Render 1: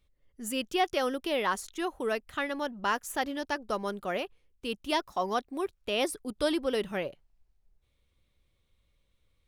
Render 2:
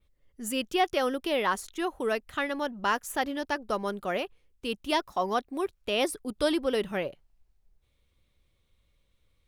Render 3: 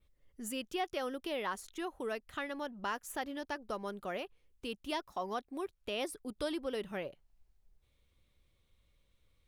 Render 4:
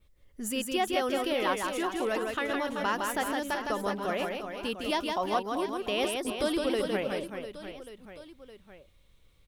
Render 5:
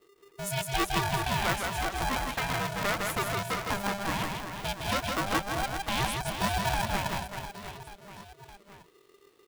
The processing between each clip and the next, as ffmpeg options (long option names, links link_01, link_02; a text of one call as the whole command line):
ffmpeg -i in.wav -af "adynamicequalizer=threshold=0.00316:dfrequency=6200:dqfactor=0.88:tfrequency=6200:tqfactor=0.88:attack=5:release=100:ratio=0.375:range=2:mode=cutabove:tftype=bell,volume=2dB" out.wav
ffmpeg -i in.wav -af "acompressor=threshold=-46dB:ratio=1.5,volume=-2dB" out.wav
ffmpeg -i in.wav -af "aecho=1:1:160|384|697.6|1137|1751:0.631|0.398|0.251|0.158|0.1,volume=7dB" out.wav
ffmpeg -i in.wav -af "aeval=exprs='val(0)*sgn(sin(2*PI*400*n/s))':channel_layout=same" out.wav